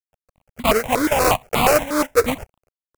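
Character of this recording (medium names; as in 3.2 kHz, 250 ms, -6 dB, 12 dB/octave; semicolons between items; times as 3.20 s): a quantiser's noise floor 10-bit, dither none; tremolo triangle 4.1 Hz, depth 50%; aliases and images of a low sample rate 1.8 kHz, jitter 20%; notches that jump at a steady rate 8.4 Hz 760–1600 Hz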